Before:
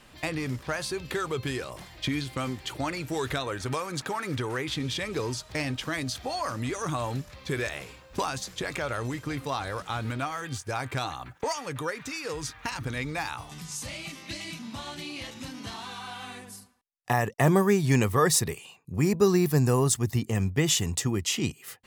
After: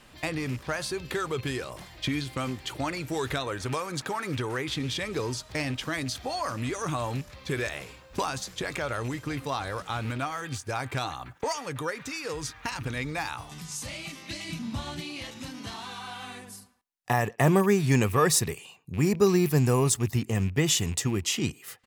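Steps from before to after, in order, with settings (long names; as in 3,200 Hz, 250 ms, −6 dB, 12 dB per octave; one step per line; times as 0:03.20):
loose part that buzzes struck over −31 dBFS, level −34 dBFS
0:14.49–0:15.01: low-shelf EQ 210 Hz +11.5 dB
far-end echo of a speakerphone 110 ms, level −27 dB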